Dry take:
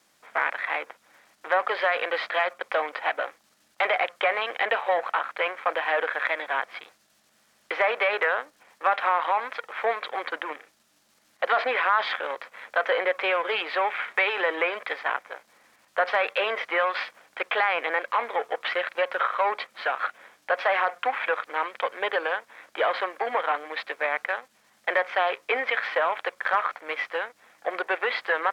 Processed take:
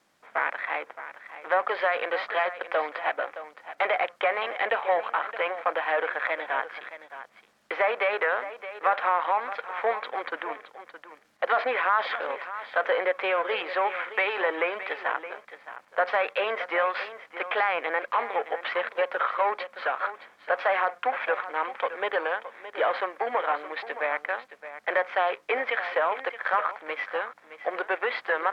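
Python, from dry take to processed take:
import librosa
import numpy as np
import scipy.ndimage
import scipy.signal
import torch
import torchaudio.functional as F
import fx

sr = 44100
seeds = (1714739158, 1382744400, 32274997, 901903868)

y = fx.high_shelf(x, sr, hz=3300.0, db=-10.0)
y = y + 10.0 ** (-13.0 / 20.0) * np.pad(y, (int(618 * sr / 1000.0), 0))[:len(y)]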